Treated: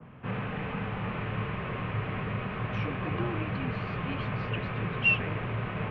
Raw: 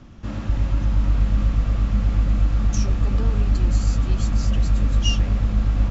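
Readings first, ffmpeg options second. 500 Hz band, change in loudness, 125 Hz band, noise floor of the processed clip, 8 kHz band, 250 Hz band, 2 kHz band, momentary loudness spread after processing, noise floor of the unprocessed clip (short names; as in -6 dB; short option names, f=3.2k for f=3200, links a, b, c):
+0.5 dB, -9.5 dB, -11.0 dB, -36 dBFS, n/a, -6.0 dB, +7.0 dB, 9 LU, -29 dBFS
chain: -af "highpass=f=220:t=q:w=0.5412,highpass=f=220:t=q:w=1.307,lowpass=f=2.8k:t=q:w=0.5176,lowpass=f=2.8k:t=q:w=0.7071,lowpass=f=2.8k:t=q:w=1.932,afreqshift=-97,adynamicequalizer=threshold=0.00178:dfrequency=1700:dqfactor=0.7:tfrequency=1700:tqfactor=0.7:attack=5:release=100:ratio=0.375:range=3:mode=boostabove:tftype=highshelf,volume=2dB"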